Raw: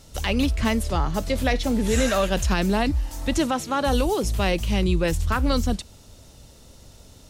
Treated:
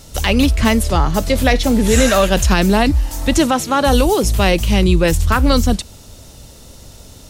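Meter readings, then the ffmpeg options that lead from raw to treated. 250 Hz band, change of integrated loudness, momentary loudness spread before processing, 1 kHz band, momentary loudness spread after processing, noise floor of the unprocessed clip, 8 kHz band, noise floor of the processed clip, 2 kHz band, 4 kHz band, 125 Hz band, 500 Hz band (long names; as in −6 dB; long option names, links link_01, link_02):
+8.5 dB, +8.5 dB, 4 LU, +8.5 dB, 4 LU, −49 dBFS, +10.5 dB, −40 dBFS, +8.5 dB, +9.0 dB, +8.5 dB, +8.5 dB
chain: -af "highshelf=frequency=9400:gain=5,volume=8.5dB"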